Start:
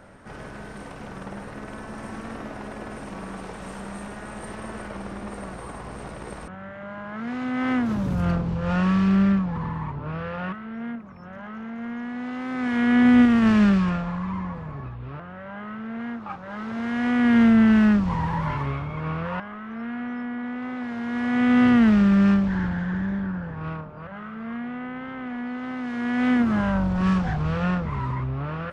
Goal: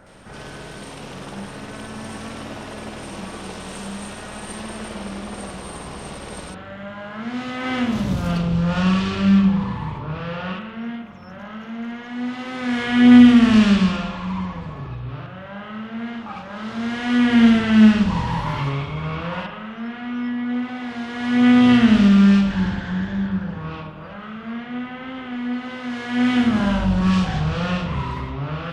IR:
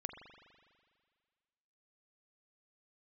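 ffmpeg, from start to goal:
-filter_complex "[0:a]asplit=2[s0][s1];[s1]highshelf=f=2300:t=q:w=1.5:g=10.5[s2];[1:a]atrim=start_sample=2205,afade=t=out:st=0.38:d=0.01,atrim=end_sample=17199,adelay=65[s3];[s2][s3]afir=irnorm=-1:irlink=0,volume=1.19[s4];[s0][s4]amix=inputs=2:normalize=0"

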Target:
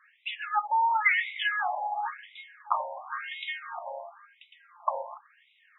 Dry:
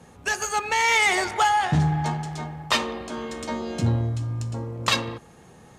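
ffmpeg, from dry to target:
-filter_complex "[0:a]asettb=1/sr,asplit=3[s0][s1][s2];[s0]atrim=end=3.124[s3];[s1]atrim=start=3.12:end=3.79,asetpts=PTS-STARTPTS,afade=t=in:d=0.004:c=qsin,afade=t=out:st=0.666:d=0.004:c=qsin,acontrast=73[s4];[s2]atrim=start=3.786[s5];[s3][s4]acrossfade=d=0.004:c1=hsin:c2=qsin[s6];[s6][s5]acrossfade=d=0.004:c1=qsin:c2=hsin,afftfilt=real='re*between(b*sr/1024,710*pow(2800/710,0.5+0.5*sin(2*PI*0.95*pts/sr))/1.41,710*pow(2800/710,0.5+0.5*sin(2*PI*0.95*pts/sr))*1.41)':imag='im*between(b*sr/1024,710*pow(2800/710,0.5+0.5*sin(2*PI*0.95*pts/sr))/1.41,710*pow(2800/710,0.5+0.5*sin(2*PI*0.95*pts/sr))*1.41)':win_size=1024:overlap=0.75,volume=1.12"

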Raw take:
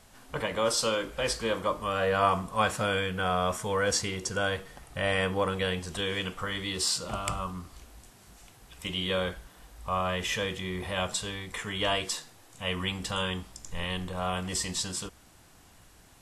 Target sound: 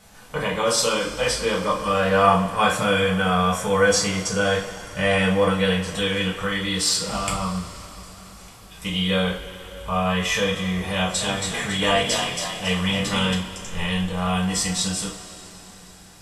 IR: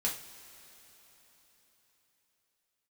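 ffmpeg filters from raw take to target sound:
-filter_complex "[0:a]asettb=1/sr,asplit=3[s0][s1][s2];[s0]atrim=end=10.934[s3];[s1]atrim=start=10.93:end=13.34,asetpts=PTS-STARTPTS,afade=t=in:d=0.004:c=qsin,afade=t=out:st=2.406:d=0.004:c=qsin,asplit=6[s4][s5][s6][s7][s8][s9];[s5]adelay=276,afreqshift=38,volume=0.631[s10];[s6]adelay=552,afreqshift=76,volume=0.251[s11];[s7]adelay=828,afreqshift=114,volume=0.101[s12];[s8]adelay=1104,afreqshift=152,volume=0.0403[s13];[s9]adelay=1380,afreqshift=190,volume=0.0162[s14];[s4][s10][s11][s12][s13][s14]amix=inputs=6:normalize=0,atrim=end_sample=106281[s15];[s2]atrim=start=13.336[s16];[s3][s15]acrossfade=d=0.004:c1=hsin:c2=qsin[s17];[s17][s16]acrossfade=d=0.004:c1=qsin:c2=hsin[s18];[1:a]atrim=start_sample=2205[s19];[s18][s19]afir=irnorm=-1:irlink=0,volume=1.41"

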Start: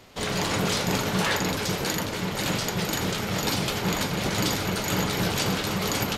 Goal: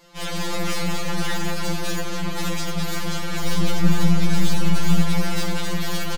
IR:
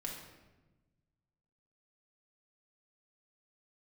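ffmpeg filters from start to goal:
-filter_complex "[0:a]aeval=exprs='(tanh(28.2*val(0)+0.75)-tanh(0.75))/28.2':c=same,asettb=1/sr,asplit=3[s0][s1][s2];[s0]atrim=end=3.434[s3];[s1]atrim=start=3.43:end=5.03,asetpts=PTS-STARTPTS,afade=t=in:d=0.004:c=qsin,afade=t=out:st=1.596:d=0.004:c=qsin,bass=f=250:g=10,treble=f=4000:g=0[s4];[s2]atrim=start=5.026[s5];[s3][s4]acrossfade=d=0.004:c1=hsin:c2=qsin[s6];[s6][s5]acrossfade=d=0.004:c1=qsin:c2=hsin,asplit=2[s7][s8];[s8]adelay=190,lowpass=f=2000:p=1,volume=0.501,asplit=2[s9][s10];[s10]adelay=190,lowpass=f=2000:p=1,volume=0.51,asplit=2[s11][s12];[s12]adelay=190,lowpass=f=2000:p=1,volume=0.51,asplit=2[s13][s14];[s14]adelay=190,lowpass=f=2000:p=1,volume=0.51,asplit=2[s15][s16];[s16]adelay=190,lowpass=f=2000:p=1,volume=0.51,asplit=2[s17][s18];[s18]adelay=190,lowpass=f=2000:p=1,volume=0.51[s19];[s7][s9][s11][s13][s15][s17][s19]amix=inputs=7:normalize=0,afftfilt=real='re*2.83*eq(mod(b,8),0)':imag='im*2.83*eq(mod(b,8),0)':win_size=2048:overlap=0.75,volume=2.11"

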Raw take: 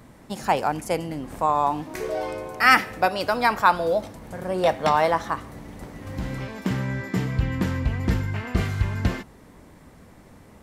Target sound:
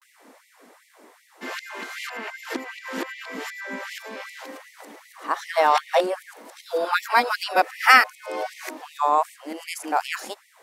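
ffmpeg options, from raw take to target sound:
-af "areverse,asubboost=boost=4.5:cutoff=100,afftfilt=real='re*gte(b*sr/1024,210*pow(1900/210,0.5+0.5*sin(2*PI*2.6*pts/sr)))':imag='im*gte(b*sr/1024,210*pow(1900/210,0.5+0.5*sin(2*PI*2.6*pts/sr)))':win_size=1024:overlap=0.75,volume=1.33"

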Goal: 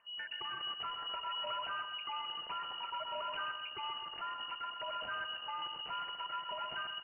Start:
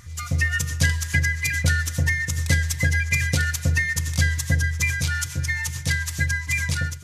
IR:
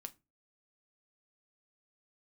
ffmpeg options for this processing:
-af "lowshelf=f=500:g=-11.5,afwtdn=0.02,alimiter=limit=0.119:level=0:latency=1:release=29,acompressor=threshold=0.00891:ratio=2,asubboost=boost=11.5:cutoff=95,afftfilt=real='re*lt(hypot(re,im),0.178)':imag='im*lt(hypot(re,im),0.178)':win_size=1024:overlap=0.75,aresample=11025,asoftclip=type=tanh:threshold=0.0158,aresample=44100,lowpass=f=2600:t=q:w=0.5098,lowpass=f=2600:t=q:w=0.6013,lowpass=f=2600:t=q:w=0.9,lowpass=f=2600:t=q:w=2.563,afreqshift=-3000,aecho=1:1:128|256|384|512|640:0.447|0.201|0.0905|0.0407|0.0183,volume=1.12"

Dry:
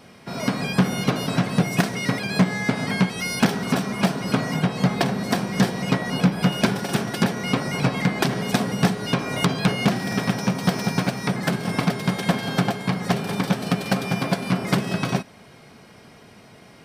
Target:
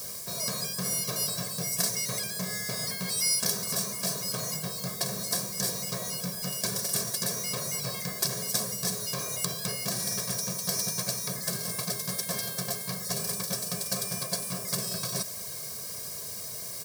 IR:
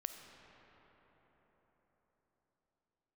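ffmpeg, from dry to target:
-af "highpass=48,aecho=1:1:1.8:0.83,areverse,acompressor=threshold=0.02:ratio=4,areverse,acrusher=bits=8:mix=0:aa=0.000001,aexciter=amount=11.4:drive=2.8:freq=4400,volume=0.75"

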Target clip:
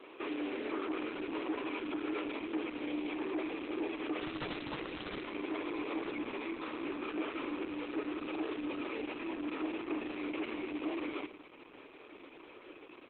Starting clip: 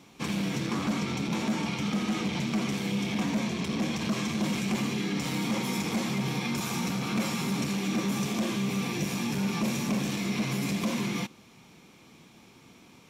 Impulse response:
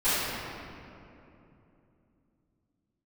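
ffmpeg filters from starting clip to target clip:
-filter_complex "[0:a]alimiter=level_in=2.24:limit=0.0631:level=0:latency=1:release=97,volume=0.447,acontrast=36,asoftclip=type=tanh:threshold=0.0422,aecho=1:1:105|210:0.188|0.0433,highpass=f=190:t=q:w=0.5412,highpass=f=190:t=q:w=1.307,lowpass=f=3000:t=q:w=0.5176,lowpass=f=3000:t=q:w=0.7071,lowpass=f=3000:t=q:w=1.932,afreqshift=99,asplit=3[s0][s1][s2];[s0]afade=t=out:st=4.19:d=0.02[s3];[s1]aeval=exprs='(mod(31.6*val(0)+1,2)-1)/31.6':c=same,afade=t=in:st=4.19:d=0.02,afade=t=out:st=5.22:d=0.02[s4];[s2]afade=t=in:st=5.22:d=0.02[s5];[s3][s4][s5]amix=inputs=3:normalize=0" -ar 48000 -c:a libopus -b:a 8k

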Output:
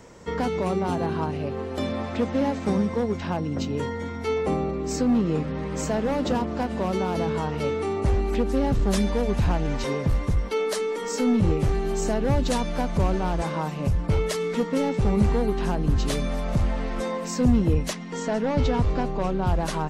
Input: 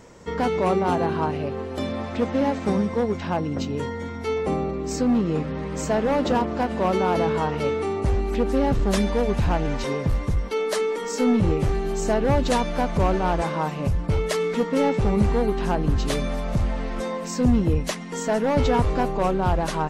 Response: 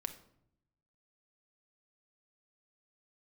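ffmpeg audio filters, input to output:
-filter_complex "[0:a]asettb=1/sr,asplit=3[s0][s1][s2];[s0]atrim=end=17.934[s3];[s1]atrim=start=17.93:end=19.47,asetpts=PTS-STARTPTS,afade=t=in:d=0.004:c=qsin,afade=t=out:st=1.536:d=0.004:c=qsin,lowpass=5700[s4];[s2]atrim=start=19.466[s5];[s3][s4]acrossfade=d=0.004:c1=hsin:c2=qsin[s6];[s6][s5]acrossfade=d=0.004:c1=qsin:c2=hsin,acrossover=split=270|3700[s7][s8][s9];[s8]alimiter=limit=0.119:level=0:latency=1:release=418[s10];[s7][s10][s9]amix=inputs=3:normalize=0"

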